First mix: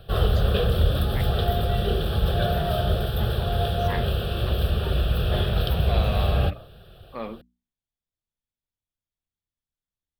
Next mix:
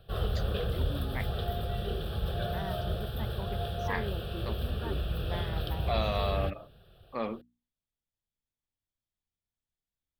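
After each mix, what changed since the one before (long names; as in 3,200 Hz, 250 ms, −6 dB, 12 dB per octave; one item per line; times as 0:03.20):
background −10.0 dB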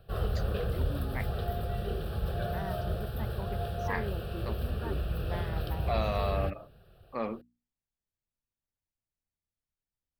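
master: add parametric band 3,400 Hz −10 dB 0.35 octaves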